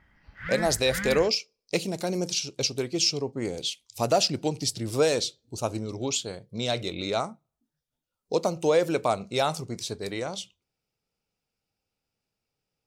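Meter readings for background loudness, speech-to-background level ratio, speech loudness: −34.5 LKFS, 7.0 dB, −27.5 LKFS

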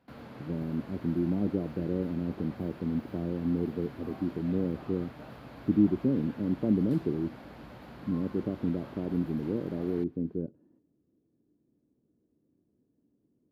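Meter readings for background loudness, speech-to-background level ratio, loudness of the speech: −47.5 LKFS, 16.0 dB, −31.5 LKFS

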